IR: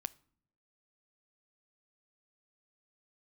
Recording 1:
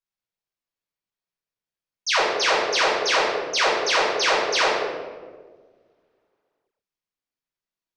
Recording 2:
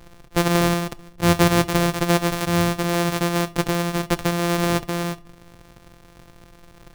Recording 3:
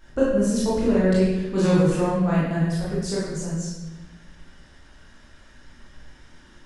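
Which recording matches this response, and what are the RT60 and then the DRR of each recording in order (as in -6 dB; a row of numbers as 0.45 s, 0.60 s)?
2; 1.5 s, no single decay rate, 1.1 s; -6.5 dB, 14.0 dB, -8.5 dB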